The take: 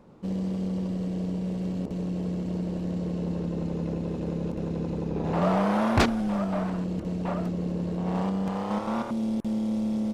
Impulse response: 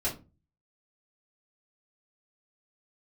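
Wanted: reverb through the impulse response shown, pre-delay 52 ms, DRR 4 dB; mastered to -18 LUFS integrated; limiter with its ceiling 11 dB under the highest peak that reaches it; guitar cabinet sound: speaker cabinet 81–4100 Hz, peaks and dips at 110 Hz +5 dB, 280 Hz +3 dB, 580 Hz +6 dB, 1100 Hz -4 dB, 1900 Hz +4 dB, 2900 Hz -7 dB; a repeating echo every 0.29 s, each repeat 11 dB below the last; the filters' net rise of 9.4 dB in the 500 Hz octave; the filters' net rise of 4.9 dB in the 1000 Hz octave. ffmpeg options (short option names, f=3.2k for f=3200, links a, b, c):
-filter_complex "[0:a]equalizer=f=500:t=o:g=6,equalizer=f=1k:t=o:g=4.5,alimiter=limit=-19.5dB:level=0:latency=1,aecho=1:1:290|580|870:0.282|0.0789|0.0221,asplit=2[a][b];[1:a]atrim=start_sample=2205,adelay=52[c];[b][c]afir=irnorm=-1:irlink=0,volume=-10dB[d];[a][d]amix=inputs=2:normalize=0,highpass=81,equalizer=f=110:t=q:w=4:g=5,equalizer=f=280:t=q:w=4:g=3,equalizer=f=580:t=q:w=4:g=6,equalizer=f=1.1k:t=q:w=4:g=-4,equalizer=f=1.9k:t=q:w=4:g=4,equalizer=f=2.9k:t=q:w=4:g=-7,lowpass=f=4.1k:w=0.5412,lowpass=f=4.1k:w=1.3066,volume=6.5dB"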